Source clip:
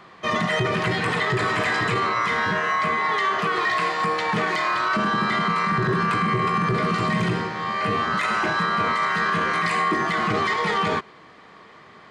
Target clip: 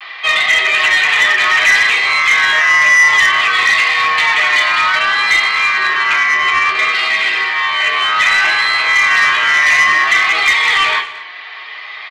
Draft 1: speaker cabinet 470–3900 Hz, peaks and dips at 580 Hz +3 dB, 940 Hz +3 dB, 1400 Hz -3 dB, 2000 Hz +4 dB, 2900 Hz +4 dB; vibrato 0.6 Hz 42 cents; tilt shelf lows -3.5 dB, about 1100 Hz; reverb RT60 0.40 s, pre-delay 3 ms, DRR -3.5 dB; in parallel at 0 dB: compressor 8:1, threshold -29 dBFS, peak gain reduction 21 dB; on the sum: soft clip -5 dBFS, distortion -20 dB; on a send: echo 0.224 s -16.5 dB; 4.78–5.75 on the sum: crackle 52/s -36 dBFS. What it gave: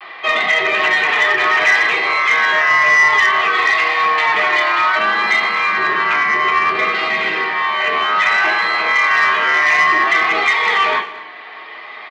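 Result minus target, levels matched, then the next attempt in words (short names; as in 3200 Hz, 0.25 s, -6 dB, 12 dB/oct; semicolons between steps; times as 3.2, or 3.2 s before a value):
1000 Hz band +4.0 dB
speaker cabinet 470–3900 Hz, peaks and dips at 580 Hz +3 dB, 940 Hz +3 dB, 1400 Hz -3 dB, 2000 Hz +4 dB, 2900 Hz +4 dB; vibrato 0.6 Hz 42 cents; tilt shelf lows -15 dB, about 1100 Hz; reverb RT60 0.40 s, pre-delay 3 ms, DRR -3.5 dB; in parallel at 0 dB: compressor 8:1, threshold -29 dBFS, peak gain reduction 24.5 dB; on the sum: soft clip -5 dBFS, distortion -15 dB; on a send: echo 0.224 s -16.5 dB; 4.78–5.75 on the sum: crackle 52/s -36 dBFS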